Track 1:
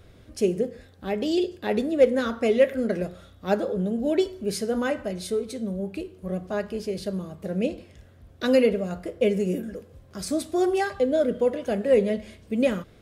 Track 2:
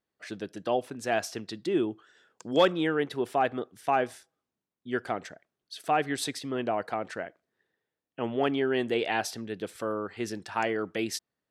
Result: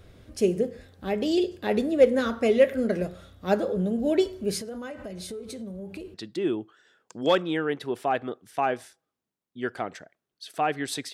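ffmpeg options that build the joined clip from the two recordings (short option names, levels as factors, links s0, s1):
-filter_complex "[0:a]asettb=1/sr,asplit=3[s0][s1][s2];[s0]atrim=end=4.614[s3];[s1]atrim=start=4.61:end=6.14,asetpts=PTS-STARTPTS,afade=t=in:d=0.004:c=qsin,afade=t=out:st=1.526:d=0.004:c=qsin,acompressor=threshold=0.02:ratio=6:attack=3.2:release=140:knee=1:detection=peak[s4];[s2]atrim=start=6.136[s5];[s3][s4]acrossfade=d=0.004:c1=hsin:c2=qsin[s6];[s6][s5]acrossfade=d=0.004:c1=qsin:c2=hsin,apad=whole_dur=11.13,atrim=end=11.13,atrim=end=6.142[s7];[1:a]atrim=start=1.438:end=6.43[s8];[s7][s8]acrossfade=d=0.004:c1=hsin:c2=hsin"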